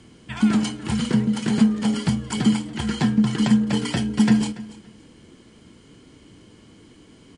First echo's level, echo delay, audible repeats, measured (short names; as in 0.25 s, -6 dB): -18.5 dB, 0.285 s, 2